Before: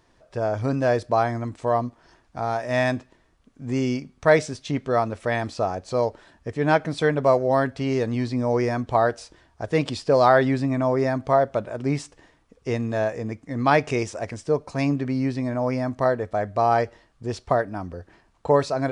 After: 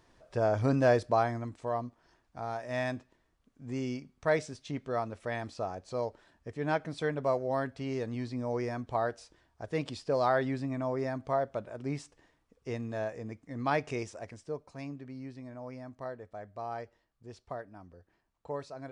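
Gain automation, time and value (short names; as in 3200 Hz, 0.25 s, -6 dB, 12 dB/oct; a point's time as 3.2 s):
0.87 s -3 dB
1.69 s -11 dB
14.01 s -11 dB
14.92 s -19 dB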